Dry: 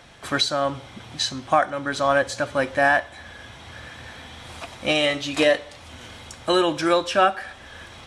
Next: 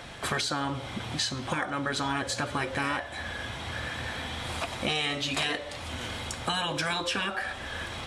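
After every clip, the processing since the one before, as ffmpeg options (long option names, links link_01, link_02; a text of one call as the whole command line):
ffmpeg -i in.wav -af "equalizer=frequency=5900:width_type=o:width=0.29:gain=-3.5,afftfilt=real='re*lt(hypot(re,im),0.316)':imag='im*lt(hypot(re,im),0.316)':win_size=1024:overlap=0.75,acompressor=threshold=-34dB:ratio=3,volume=5.5dB" out.wav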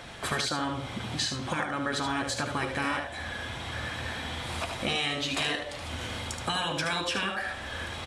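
ffmpeg -i in.wav -af "aecho=1:1:75:0.447,volume=-1dB" out.wav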